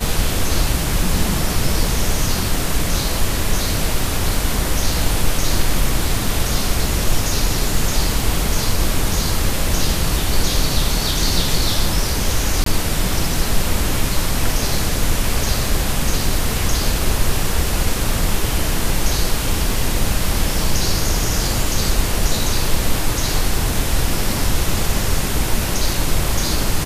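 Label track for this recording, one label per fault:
12.640000	12.660000	drop-out 23 ms

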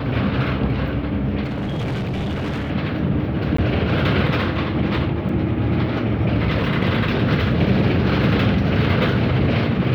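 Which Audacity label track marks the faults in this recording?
1.430000	2.710000	clipping −21 dBFS
3.570000	3.580000	drop-out 14 ms
5.290000	5.290000	drop-out 3 ms

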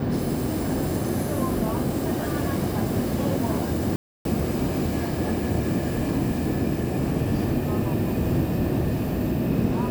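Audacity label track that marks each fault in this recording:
3.960000	4.250000	drop-out 292 ms

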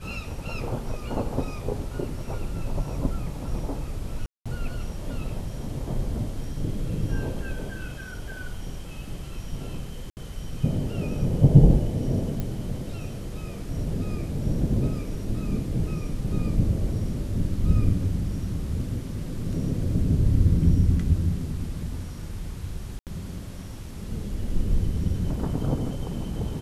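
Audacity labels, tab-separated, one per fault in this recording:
4.260000	4.460000	drop-out 196 ms
10.100000	10.170000	drop-out 69 ms
12.400000	12.400000	click −17 dBFS
22.990000	23.070000	drop-out 78 ms

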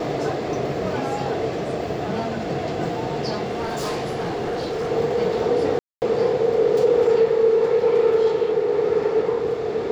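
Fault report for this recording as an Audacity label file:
3.430000	4.910000	clipping −22 dBFS
5.790000	6.020000	drop-out 229 ms

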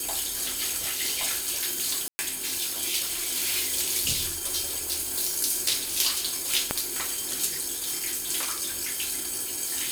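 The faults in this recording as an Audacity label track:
2.080000	2.190000	drop-out 110 ms
6.710000	6.710000	click −7 dBFS

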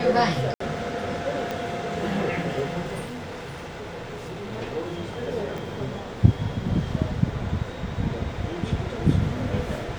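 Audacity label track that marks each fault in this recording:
0.540000	0.600000	drop-out 64 ms
1.510000	1.510000	click −15 dBFS
3.040000	4.530000	clipping −31.5 dBFS
5.580000	5.580000	click

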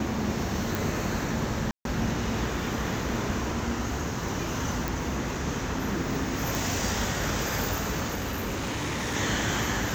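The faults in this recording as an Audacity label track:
0.750000	0.750000	click
1.710000	1.850000	drop-out 142 ms
4.880000	4.880000	click
6.550000	6.550000	click
8.140000	9.160000	clipping −27 dBFS

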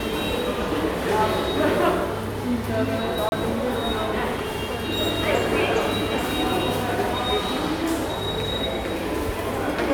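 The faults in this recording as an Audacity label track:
3.290000	3.320000	drop-out 31 ms

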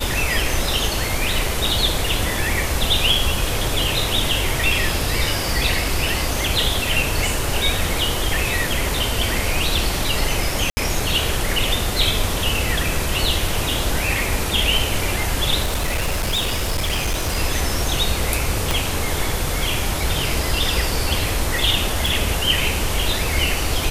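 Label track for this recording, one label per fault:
10.700000	10.770000	drop-out 70 ms
15.620000	17.370000	clipping −17 dBFS
18.710000	18.710000	click
22.060000	22.060000	click

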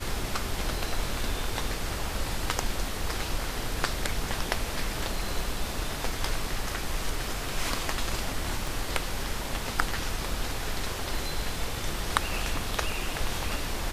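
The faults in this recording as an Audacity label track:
8.670000	8.670000	click

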